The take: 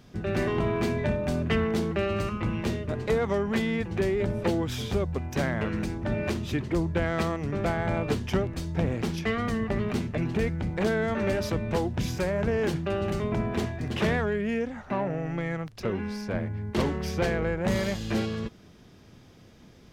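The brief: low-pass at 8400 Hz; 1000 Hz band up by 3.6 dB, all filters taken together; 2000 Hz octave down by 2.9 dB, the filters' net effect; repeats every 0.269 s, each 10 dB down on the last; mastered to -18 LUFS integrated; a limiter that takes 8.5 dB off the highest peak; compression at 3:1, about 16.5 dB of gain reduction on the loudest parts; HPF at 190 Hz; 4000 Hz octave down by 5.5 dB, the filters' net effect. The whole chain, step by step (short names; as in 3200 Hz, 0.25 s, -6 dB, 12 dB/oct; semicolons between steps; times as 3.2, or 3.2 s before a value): HPF 190 Hz; LPF 8400 Hz; bell 1000 Hz +6 dB; bell 2000 Hz -4.5 dB; bell 4000 Hz -6 dB; compressor 3:1, threshold -46 dBFS; limiter -36.5 dBFS; feedback echo 0.269 s, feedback 32%, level -10 dB; gain +28 dB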